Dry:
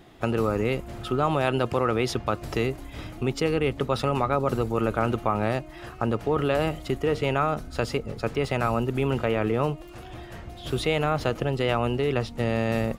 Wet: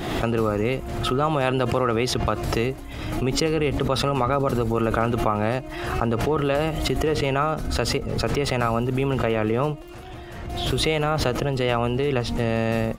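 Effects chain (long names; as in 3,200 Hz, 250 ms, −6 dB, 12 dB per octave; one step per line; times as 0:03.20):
background raised ahead of every attack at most 38 dB per second
level +1.5 dB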